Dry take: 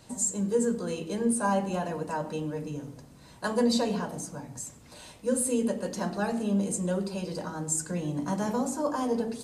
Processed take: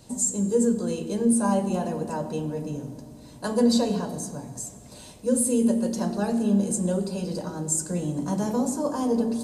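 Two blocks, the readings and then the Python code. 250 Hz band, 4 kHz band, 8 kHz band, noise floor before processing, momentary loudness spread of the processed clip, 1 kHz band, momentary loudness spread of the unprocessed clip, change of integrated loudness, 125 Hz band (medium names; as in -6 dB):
+5.5 dB, +2.0 dB, +4.0 dB, -52 dBFS, 14 LU, 0.0 dB, 12 LU, +4.5 dB, +4.0 dB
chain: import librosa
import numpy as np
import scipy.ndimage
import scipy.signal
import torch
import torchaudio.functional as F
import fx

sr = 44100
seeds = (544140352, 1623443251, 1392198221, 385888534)

y = fx.peak_eq(x, sr, hz=1700.0, db=-8.5, octaves=2.0)
y = fx.rev_fdn(y, sr, rt60_s=3.1, lf_ratio=1.0, hf_ratio=0.5, size_ms=24.0, drr_db=11.5)
y = y * 10.0 ** (4.5 / 20.0)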